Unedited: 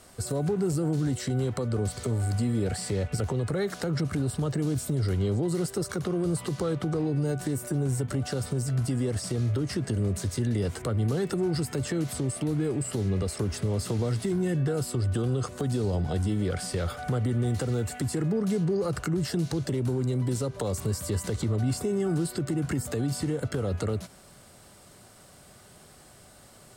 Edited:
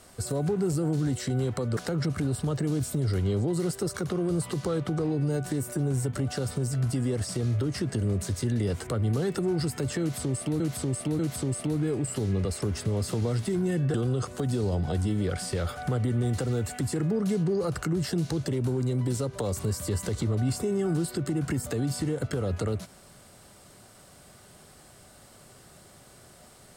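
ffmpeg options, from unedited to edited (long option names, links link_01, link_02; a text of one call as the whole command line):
ffmpeg -i in.wav -filter_complex "[0:a]asplit=5[link_01][link_02][link_03][link_04][link_05];[link_01]atrim=end=1.772[link_06];[link_02]atrim=start=3.718:end=12.552[link_07];[link_03]atrim=start=11.958:end=12.552[link_08];[link_04]atrim=start=11.958:end=14.712[link_09];[link_05]atrim=start=15.148[link_10];[link_06][link_07]acrossfade=duration=0.004:curve1=hsin:curve2=hsin[link_11];[link_11][link_08]acrossfade=duration=0.004:curve1=hsin:curve2=hsin[link_12];[link_12][link_09]acrossfade=duration=0.004:curve1=hsin:curve2=hsin[link_13];[link_13][link_10]acrossfade=duration=0.004:curve1=hsin:curve2=hsin" out.wav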